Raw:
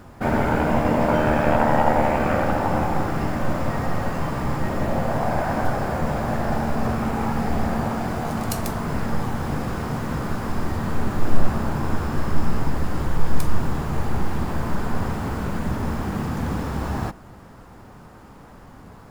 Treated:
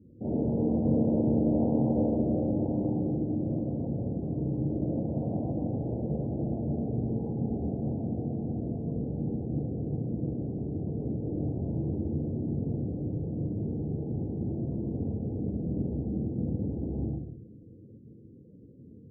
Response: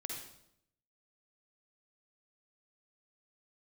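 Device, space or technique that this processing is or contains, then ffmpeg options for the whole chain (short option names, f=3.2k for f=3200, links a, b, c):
next room: -filter_complex "[0:a]highpass=84,lowpass=f=490:w=0.5412,lowpass=f=490:w=1.3066[a];[1:a]atrim=start_sample=2205[b];[a][b]afir=irnorm=-1:irlink=0,afftdn=nr=31:nf=-47,lowpass=1.1k,volume=-3dB"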